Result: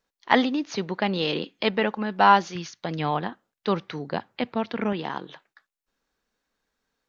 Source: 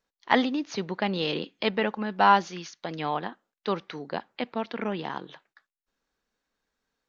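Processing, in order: 2.55–4.93 bell 100 Hz +12 dB 1.3 oct; gain +2.5 dB

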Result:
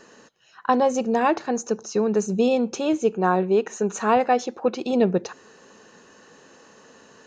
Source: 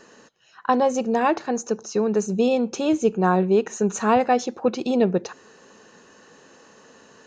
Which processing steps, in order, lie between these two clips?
2.78–4.93 tone controls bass -6 dB, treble -3 dB

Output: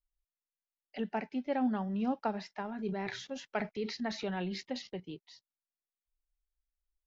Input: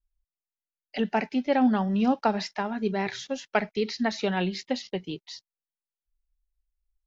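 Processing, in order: high shelf 3500 Hz -9 dB; 2.65–5 transient shaper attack -1 dB, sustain +8 dB; gain -9 dB

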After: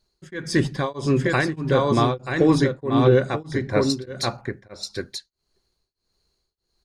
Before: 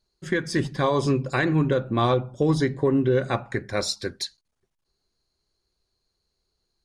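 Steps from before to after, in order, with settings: 3.39–3.9 LPF 2000 Hz 6 dB/oct; on a send: echo 0.933 s -4 dB; on the sum: beating tremolo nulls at 1.6 Hz; gain +4.5 dB

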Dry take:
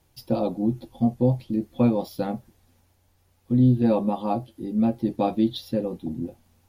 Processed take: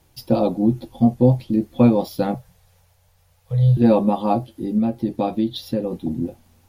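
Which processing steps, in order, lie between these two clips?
2.34–3.77 Chebyshev band-stop 180–440 Hz, order 5; 4.78–5.92 compressor 2:1, threshold -27 dBFS, peak gain reduction 6.5 dB; gain +6 dB

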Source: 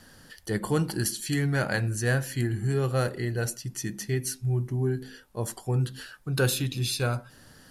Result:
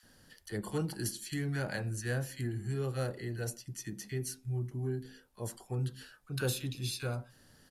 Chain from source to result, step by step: bands offset in time highs, lows 30 ms, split 1200 Hz; gain -8.5 dB

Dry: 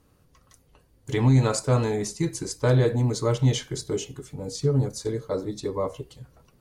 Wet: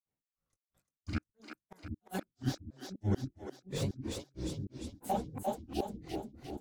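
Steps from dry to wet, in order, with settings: reverse delay 0.334 s, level -3.5 dB; gate -51 dBFS, range -27 dB; chorus 2.3 Hz, delay 19 ms, depth 7.2 ms; flipped gate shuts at -18 dBFS, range -38 dB; grains 0.251 s, grains 3/s, spray 27 ms, pitch spread up and down by 12 st; on a send: split-band echo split 330 Hz, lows 0.76 s, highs 0.349 s, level -6 dB; on the sum: slew limiter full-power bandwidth 47 Hz

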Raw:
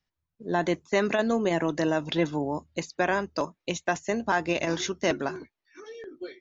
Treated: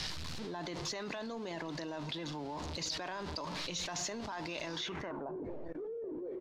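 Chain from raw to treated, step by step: zero-crossing step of -36 dBFS; limiter -18.5 dBFS, peak gain reduction 7 dB; dynamic EQ 970 Hz, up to +7 dB, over -47 dBFS, Q 2; echo 0.992 s -23.5 dB; shoebox room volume 2300 m³, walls furnished, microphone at 0.47 m; low-pass sweep 4400 Hz -> 500 Hz, 4.78–5.34; level quantiser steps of 22 dB; high shelf 6600 Hz +12 dB; gain +3 dB

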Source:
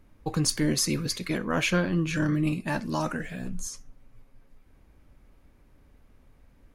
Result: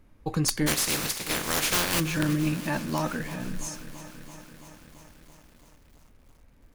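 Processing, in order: 0.66–1.99 spectral contrast lowered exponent 0.26; wrapped overs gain 15 dB; lo-fi delay 0.335 s, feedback 80%, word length 8-bit, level -15 dB

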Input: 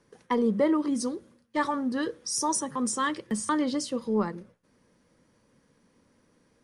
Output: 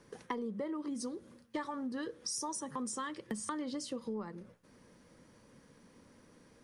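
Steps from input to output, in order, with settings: compressor 12:1, threshold -40 dBFS, peak gain reduction 21 dB; gain +4 dB

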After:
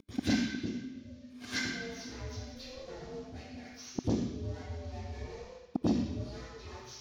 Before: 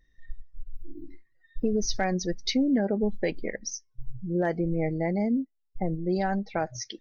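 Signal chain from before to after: CVSD 32 kbps; tilt shelf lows -8 dB, about 1400 Hz; notch 780 Hz, Q 16; limiter -25.5 dBFS, peak gain reduction 8.5 dB; sample leveller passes 2; upward compressor, threshold -43 dBFS; flipped gate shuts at -36 dBFS, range -40 dB; ring modulator 250 Hz; reverb RT60 1.0 s, pre-delay 87 ms, DRR -16.5 dB; core saturation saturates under 390 Hz; gain +6.5 dB

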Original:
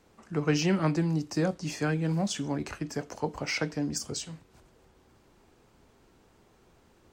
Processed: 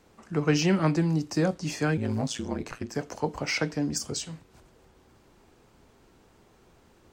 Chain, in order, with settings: 1.97–2.95 ring modulator 57 Hz; gain +2.5 dB

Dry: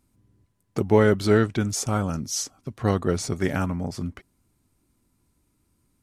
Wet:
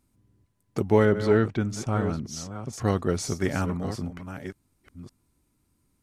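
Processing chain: reverse delay 0.566 s, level -10.5 dB; 1.05–2.73 LPF 2500 Hz 6 dB/oct; gain -2 dB

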